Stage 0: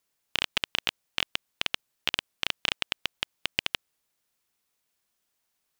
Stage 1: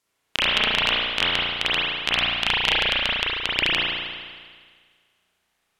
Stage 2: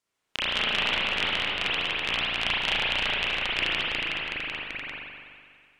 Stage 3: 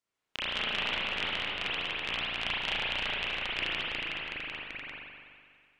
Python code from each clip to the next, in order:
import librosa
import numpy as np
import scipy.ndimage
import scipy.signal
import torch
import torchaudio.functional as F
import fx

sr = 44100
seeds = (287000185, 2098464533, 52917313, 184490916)

y1 = scipy.signal.sosfilt(scipy.signal.butter(2, 12000.0, 'lowpass', fs=sr, output='sos'), x)
y1 = fx.rev_spring(y1, sr, rt60_s=1.7, pass_ms=(34,), chirp_ms=45, drr_db=-8.0)
y1 = F.gain(torch.from_numpy(y1), 3.0).numpy()
y2 = fx.peak_eq(y1, sr, hz=12000.0, db=-8.5, octaves=0.28)
y2 = fx.echo_pitch(y2, sr, ms=146, semitones=-1, count=3, db_per_echo=-3.0)
y2 = F.gain(torch.from_numpy(y2), -7.0).numpy()
y3 = fx.high_shelf(y2, sr, hz=8800.0, db=-7.5)
y3 = F.gain(torch.from_numpy(y3), -5.5).numpy()